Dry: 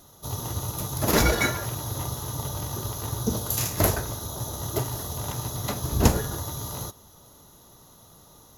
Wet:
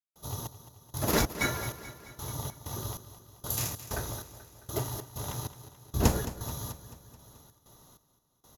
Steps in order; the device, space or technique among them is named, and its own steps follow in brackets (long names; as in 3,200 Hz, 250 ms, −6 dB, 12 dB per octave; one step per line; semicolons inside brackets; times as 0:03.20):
trance gate with a delay (gate pattern ".xx...xx" 96 BPM −60 dB; repeating echo 217 ms, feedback 58%, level −14 dB)
level −5 dB